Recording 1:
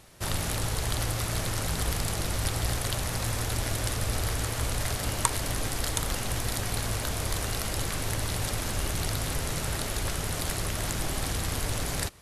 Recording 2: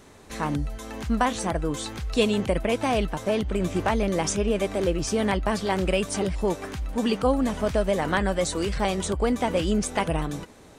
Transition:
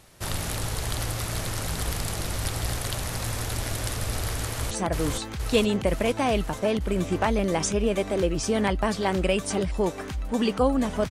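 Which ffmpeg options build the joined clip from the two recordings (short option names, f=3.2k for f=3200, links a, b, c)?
-filter_complex "[0:a]apad=whole_dur=11.1,atrim=end=11.1,atrim=end=4.712[a];[1:a]atrim=start=1.348:end=7.74[b];[a][b]acrossfade=d=0.004:c1=hsin:c2=hsin,asplit=2[c][d];[d]afade=t=in:st=4.45:d=0.01,afade=t=out:st=4.71:d=0.01,aecho=0:1:470|940|1410|1880|2350|2820|3290|3760|4230|4700|5170:0.841395|0.546907|0.355489|0.231068|0.150194|0.0976263|0.0634571|0.0412471|0.0268106|0.0174269|0.0113275[e];[c][e]amix=inputs=2:normalize=0"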